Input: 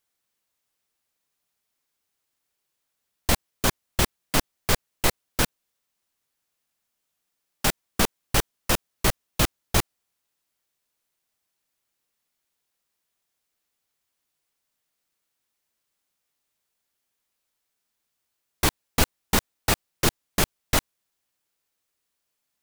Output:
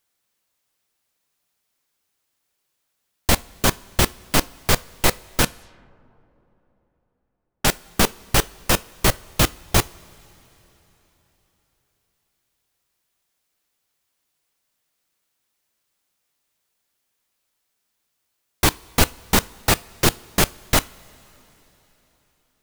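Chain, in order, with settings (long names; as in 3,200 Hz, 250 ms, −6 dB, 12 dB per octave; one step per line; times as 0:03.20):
coupled-rooms reverb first 0.3 s, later 3.9 s, from −18 dB, DRR 16.5 dB
0:05.43–0:07.68: low-pass that shuts in the quiet parts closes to 870 Hz, open at −31.5 dBFS
level +4.5 dB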